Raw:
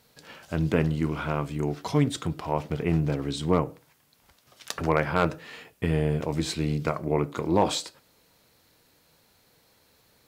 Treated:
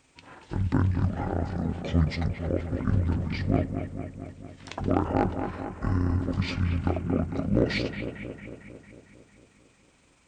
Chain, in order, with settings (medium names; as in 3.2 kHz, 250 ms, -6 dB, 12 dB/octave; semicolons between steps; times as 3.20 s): rotating-head pitch shifter -9.5 st; bucket-brigade echo 226 ms, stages 4096, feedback 64%, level -8 dB